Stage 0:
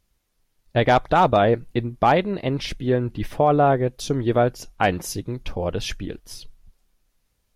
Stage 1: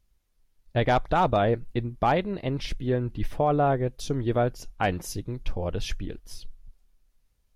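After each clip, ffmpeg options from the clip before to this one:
ffmpeg -i in.wav -af "lowshelf=frequency=71:gain=11,volume=-6dB" out.wav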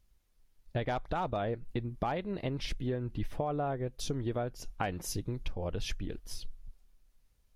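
ffmpeg -i in.wav -af "acompressor=threshold=-31dB:ratio=5" out.wav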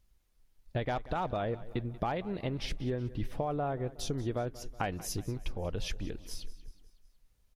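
ffmpeg -i in.wav -af "aecho=1:1:185|370|555|740:0.126|0.0667|0.0354|0.0187" out.wav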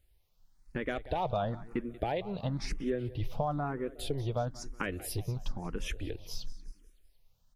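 ffmpeg -i in.wav -filter_complex "[0:a]asplit=2[link_01][link_02];[link_02]afreqshift=1[link_03];[link_01][link_03]amix=inputs=2:normalize=1,volume=3.5dB" out.wav

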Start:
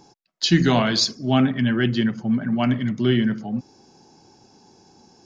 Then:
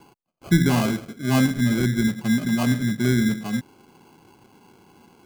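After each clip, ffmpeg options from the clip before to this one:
ffmpeg -i in.wav -filter_complex "[0:a]lowpass=frequency=1700:width=0.5412,lowpass=frequency=1700:width=1.3066,acrossover=split=330|910[link_01][link_02][link_03];[link_02]acompressor=threshold=-35dB:ratio=6[link_04];[link_01][link_04][link_03]amix=inputs=3:normalize=0,acrusher=samples=24:mix=1:aa=0.000001,volume=1dB" out.wav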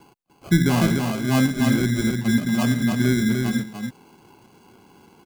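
ffmpeg -i in.wav -af "aecho=1:1:296:0.596" out.wav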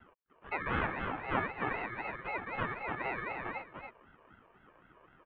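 ffmpeg -i in.wav -filter_complex "[0:a]highpass=frequency=190:width_type=q:width=0.5412,highpass=frequency=190:width_type=q:width=1.307,lowpass=frequency=2900:width_type=q:width=0.5176,lowpass=frequency=2900:width_type=q:width=0.7071,lowpass=frequency=2900:width_type=q:width=1.932,afreqshift=-120,acrossover=split=450 2100:gain=0.0891 1 0.158[link_01][link_02][link_03];[link_01][link_02][link_03]amix=inputs=3:normalize=0,aeval=exprs='val(0)*sin(2*PI*450*n/s+450*0.5/3.9*sin(2*PI*3.9*n/s))':channel_layout=same" out.wav

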